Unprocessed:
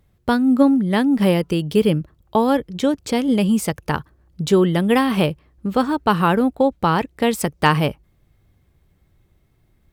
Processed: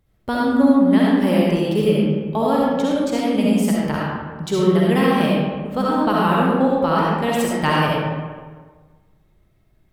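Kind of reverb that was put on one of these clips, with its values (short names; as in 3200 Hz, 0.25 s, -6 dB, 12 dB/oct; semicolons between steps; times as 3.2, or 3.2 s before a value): digital reverb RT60 1.5 s, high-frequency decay 0.55×, pre-delay 25 ms, DRR -5.5 dB; gain -6 dB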